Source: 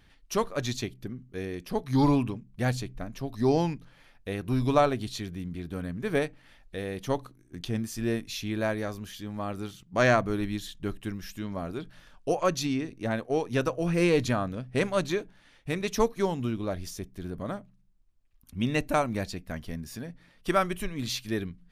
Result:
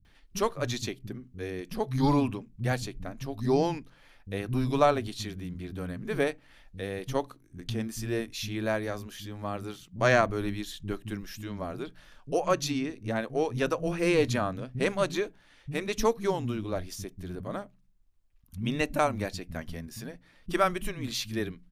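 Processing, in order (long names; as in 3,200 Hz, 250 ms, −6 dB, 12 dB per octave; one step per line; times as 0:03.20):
multiband delay without the direct sound lows, highs 50 ms, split 200 Hz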